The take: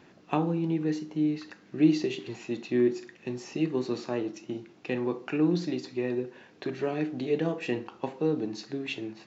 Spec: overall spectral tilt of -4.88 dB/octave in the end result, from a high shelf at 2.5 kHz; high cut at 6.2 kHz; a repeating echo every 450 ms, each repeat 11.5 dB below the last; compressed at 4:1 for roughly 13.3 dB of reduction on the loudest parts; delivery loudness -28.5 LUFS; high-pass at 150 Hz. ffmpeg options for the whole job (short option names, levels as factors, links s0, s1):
-af "highpass=150,lowpass=6200,highshelf=f=2500:g=9,acompressor=threshold=0.0224:ratio=4,aecho=1:1:450|900|1350:0.266|0.0718|0.0194,volume=2.66"